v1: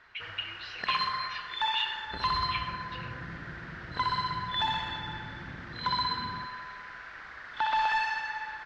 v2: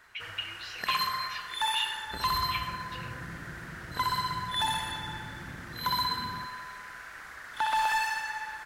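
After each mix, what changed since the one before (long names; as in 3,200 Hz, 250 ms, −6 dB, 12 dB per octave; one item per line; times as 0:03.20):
master: remove low-pass filter 4,700 Hz 24 dB per octave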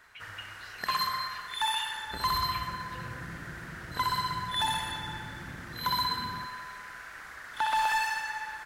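speech −9.5 dB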